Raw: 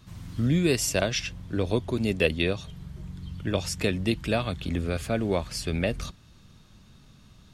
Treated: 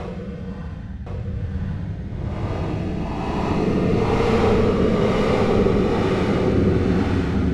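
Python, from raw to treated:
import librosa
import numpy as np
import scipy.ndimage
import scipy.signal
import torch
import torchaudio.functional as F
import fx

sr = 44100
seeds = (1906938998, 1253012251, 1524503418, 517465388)

p1 = fx.fold_sine(x, sr, drive_db=12, ceiling_db=-8.0)
p2 = x + (p1 * librosa.db_to_amplitude(-7.5))
p3 = fx.sample_hold(p2, sr, seeds[0], rate_hz=1700.0, jitter_pct=20)
p4 = fx.paulstretch(p3, sr, seeds[1], factor=38.0, window_s=0.05, from_s=3.74)
p5 = fx.rotary(p4, sr, hz=1.1)
p6 = fx.spacing_loss(p5, sr, db_at_10k=23)
y = p6 + fx.echo_single(p6, sr, ms=1064, db=-4.5, dry=0)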